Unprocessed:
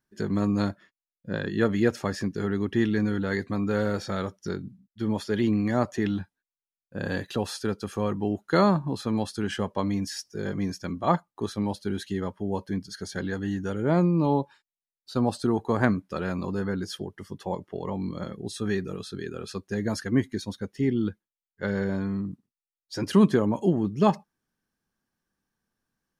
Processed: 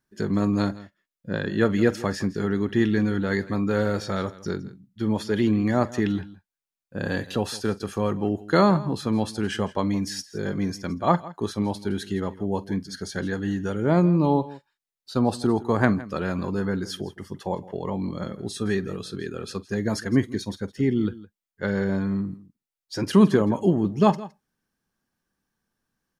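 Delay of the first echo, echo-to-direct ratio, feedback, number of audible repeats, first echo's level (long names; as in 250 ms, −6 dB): 46 ms, −16.0 dB, repeats not evenly spaced, 2, −20.0 dB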